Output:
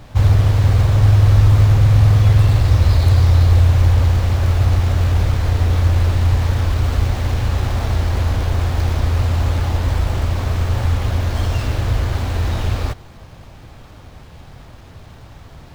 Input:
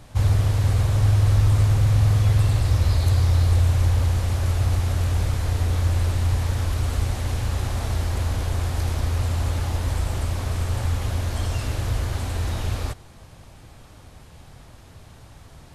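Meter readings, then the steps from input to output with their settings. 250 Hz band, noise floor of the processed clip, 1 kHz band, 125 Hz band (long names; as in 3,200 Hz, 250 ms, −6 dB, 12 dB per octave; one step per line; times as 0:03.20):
+6.5 dB, −40 dBFS, +6.5 dB, +6.5 dB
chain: running median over 5 samples
level +6.5 dB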